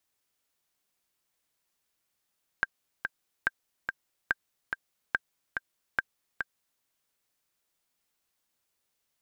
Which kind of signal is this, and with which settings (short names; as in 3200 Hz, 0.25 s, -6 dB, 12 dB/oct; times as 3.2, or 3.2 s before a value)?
metronome 143 bpm, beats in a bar 2, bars 5, 1580 Hz, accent 5.5 dB -11.5 dBFS